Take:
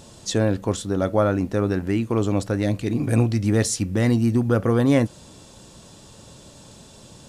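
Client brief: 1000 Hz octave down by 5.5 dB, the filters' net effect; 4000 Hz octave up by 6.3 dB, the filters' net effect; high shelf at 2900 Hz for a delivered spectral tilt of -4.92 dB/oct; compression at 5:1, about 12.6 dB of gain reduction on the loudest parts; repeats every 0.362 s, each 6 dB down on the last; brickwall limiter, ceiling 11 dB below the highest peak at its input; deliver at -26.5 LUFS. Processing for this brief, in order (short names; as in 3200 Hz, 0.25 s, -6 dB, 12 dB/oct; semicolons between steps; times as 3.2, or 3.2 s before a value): bell 1000 Hz -9 dB; high shelf 2900 Hz +4.5 dB; bell 4000 Hz +4.5 dB; compressor 5:1, threshold -29 dBFS; limiter -28.5 dBFS; feedback echo 0.362 s, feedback 50%, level -6 dB; gain +10.5 dB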